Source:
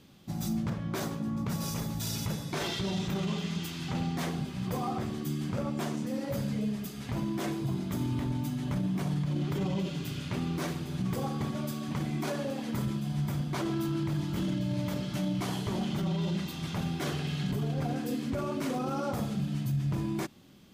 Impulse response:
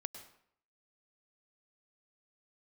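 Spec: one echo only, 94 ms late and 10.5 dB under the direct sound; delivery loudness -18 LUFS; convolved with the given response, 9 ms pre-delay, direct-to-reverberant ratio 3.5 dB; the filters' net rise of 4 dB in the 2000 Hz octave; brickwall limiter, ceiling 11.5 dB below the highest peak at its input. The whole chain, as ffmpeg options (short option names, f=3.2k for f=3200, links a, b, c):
-filter_complex "[0:a]equalizer=f=2k:t=o:g=5,alimiter=level_in=9dB:limit=-24dB:level=0:latency=1,volume=-9dB,aecho=1:1:94:0.299,asplit=2[a][b];[1:a]atrim=start_sample=2205,adelay=9[c];[b][c]afir=irnorm=-1:irlink=0,volume=-1dB[d];[a][d]amix=inputs=2:normalize=0,volume=20.5dB"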